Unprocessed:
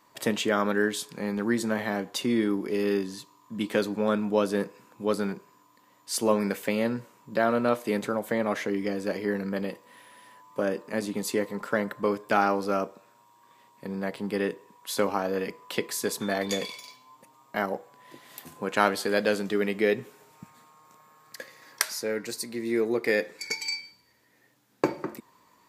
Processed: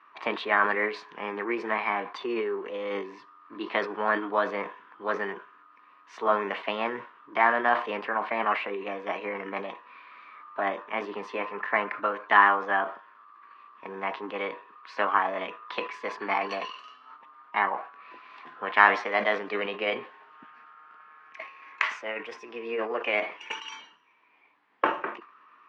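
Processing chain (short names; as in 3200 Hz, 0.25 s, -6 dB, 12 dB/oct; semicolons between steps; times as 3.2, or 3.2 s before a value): formant shift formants +4 st; speaker cabinet 430–3000 Hz, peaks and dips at 540 Hz -9 dB, 1100 Hz +9 dB, 1800 Hz +4 dB; sustainer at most 130 dB/s; gain +1.5 dB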